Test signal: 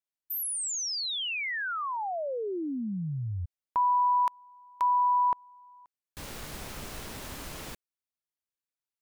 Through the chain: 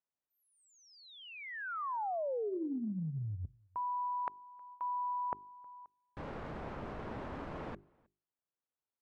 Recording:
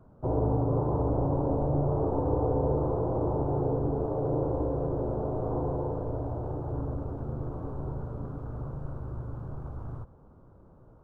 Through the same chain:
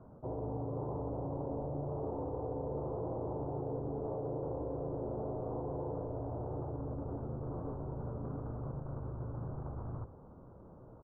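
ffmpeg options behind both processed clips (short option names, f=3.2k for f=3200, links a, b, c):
-filter_complex "[0:a]bandreject=f=50:t=h:w=6,bandreject=f=100:t=h:w=6,bandreject=f=150:t=h:w=6,bandreject=f=200:t=h:w=6,bandreject=f=250:t=h:w=6,bandreject=f=300:t=h:w=6,bandreject=f=350:t=h:w=6,bandreject=f=400:t=h:w=6,areverse,acompressor=threshold=-37dB:ratio=10:attack=5.5:release=158:knee=1:detection=peak,areverse,lowpass=1.2k,lowshelf=f=65:g=-9.5,asplit=2[a][b];[b]adelay=314.9,volume=-28dB,highshelf=f=4k:g=-7.08[c];[a][c]amix=inputs=2:normalize=0,volume=3.5dB"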